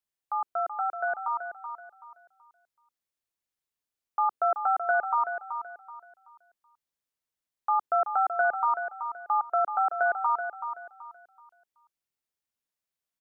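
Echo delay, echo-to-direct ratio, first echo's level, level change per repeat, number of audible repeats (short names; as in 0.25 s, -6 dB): 0.379 s, -8.0 dB, -8.5 dB, -10.5 dB, 3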